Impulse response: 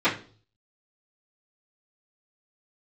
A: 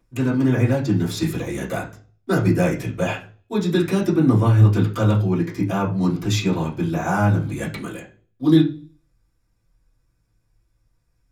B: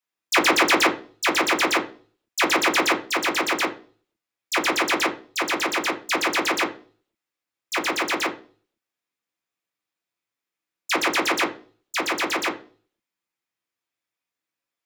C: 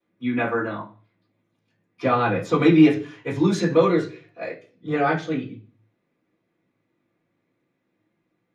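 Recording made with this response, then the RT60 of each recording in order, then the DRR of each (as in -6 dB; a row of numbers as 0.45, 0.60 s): C; 0.40, 0.40, 0.40 s; -9.5, -0.5, -16.0 dB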